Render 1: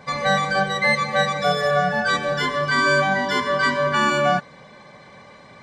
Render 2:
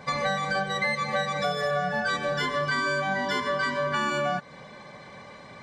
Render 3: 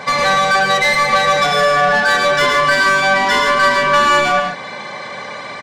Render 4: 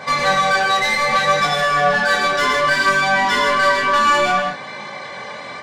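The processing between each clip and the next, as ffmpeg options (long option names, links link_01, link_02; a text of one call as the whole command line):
ffmpeg -i in.wav -af "acompressor=threshold=-24dB:ratio=6" out.wav
ffmpeg -i in.wav -filter_complex "[0:a]asplit=2[link_01][link_02];[link_02]highpass=frequency=720:poles=1,volume=17dB,asoftclip=type=tanh:threshold=-14.5dB[link_03];[link_01][link_03]amix=inputs=2:normalize=0,lowpass=frequency=7200:poles=1,volume=-6dB,aecho=1:1:107.9|145.8:0.562|0.398,volume=6.5dB" out.wav
ffmpeg -i in.wav -af "flanger=delay=19.5:depth=4:speed=0.63" out.wav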